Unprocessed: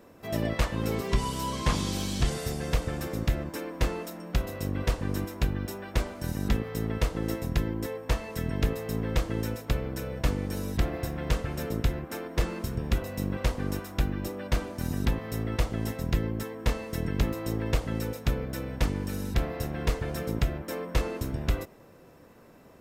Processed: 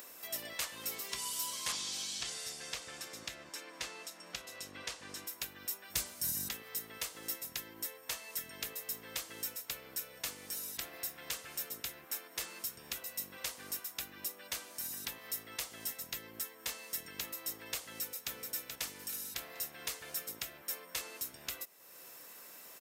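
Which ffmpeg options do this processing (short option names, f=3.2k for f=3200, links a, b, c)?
-filter_complex "[0:a]asettb=1/sr,asplit=3[a][b][c];[a]atrim=end=1.724[d];[b]atrim=start=1.72:end=5.27,asetpts=PTS-STARTPTS,afade=t=in:d=0.004:c=qsin,afade=t=out:st=3.546:d=0.004:c=qsin,lowpass=6.7k[e];[c]atrim=start=5.266[f];[d][e]acrossfade=d=0.004:c1=hsin:c2=qsin[g];[g][f]acrossfade=d=0.004:c1=qsin:c2=hsin,asettb=1/sr,asplit=3[h][i][j];[h]atrim=end=5.904[k];[i]atrim=start=5.9:end=6.49,asetpts=PTS-STARTPTS,afade=t=in:d=0.004:c=qsin,afade=t=out:st=0.586:d=0.004:c=qsin,bass=f=250:g=14,treble=f=4k:g=6[l];[j]atrim=start=6.486[m];[k][l]acrossfade=d=0.004:c1=hsin:c2=qsin[n];[n][m]acrossfade=d=0.004:c1=qsin:c2=hsin,asplit=2[o][p];[p]afade=t=in:st=17.86:d=0.01,afade=t=out:st=18.32:d=0.01,aecho=0:1:430|860|1290|1720:0.530884|0.18581|0.0650333|0.0227617[q];[o][q]amix=inputs=2:normalize=0,aderivative,acompressor=mode=upward:threshold=-44dB:ratio=2.5,volume=3.5dB"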